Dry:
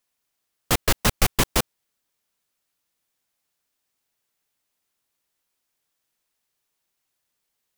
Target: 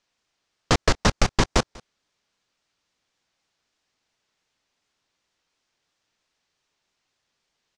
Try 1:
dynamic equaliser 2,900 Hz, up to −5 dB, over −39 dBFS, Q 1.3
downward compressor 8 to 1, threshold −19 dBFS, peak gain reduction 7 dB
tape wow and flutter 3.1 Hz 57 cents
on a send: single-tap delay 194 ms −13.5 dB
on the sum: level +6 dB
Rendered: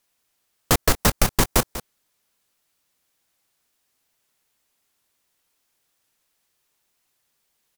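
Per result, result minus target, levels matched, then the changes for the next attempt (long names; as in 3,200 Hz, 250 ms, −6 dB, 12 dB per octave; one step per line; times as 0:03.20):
echo-to-direct +11 dB; 8,000 Hz band +5.0 dB
change: single-tap delay 194 ms −24.5 dB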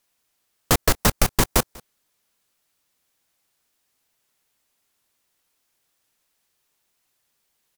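8,000 Hz band +4.5 dB
add after downward compressor: low-pass filter 6,300 Hz 24 dB per octave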